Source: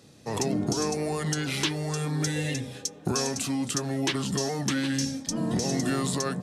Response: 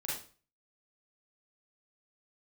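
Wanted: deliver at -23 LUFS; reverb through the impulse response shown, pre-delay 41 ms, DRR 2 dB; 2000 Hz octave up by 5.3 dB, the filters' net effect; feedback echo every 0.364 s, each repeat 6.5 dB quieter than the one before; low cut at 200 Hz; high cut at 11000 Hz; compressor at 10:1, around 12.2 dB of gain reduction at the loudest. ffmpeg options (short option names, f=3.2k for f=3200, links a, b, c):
-filter_complex "[0:a]highpass=200,lowpass=11k,equalizer=f=2k:t=o:g=6.5,acompressor=threshold=-35dB:ratio=10,aecho=1:1:364|728|1092|1456|1820|2184:0.473|0.222|0.105|0.0491|0.0231|0.0109,asplit=2[a][b];[1:a]atrim=start_sample=2205,adelay=41[c];[b][c]afir=irnorm=-1:irlink=0,volume=-4.5dB[d];[a][d]amix=inputs=2:normalize=0,volume=12.5dB"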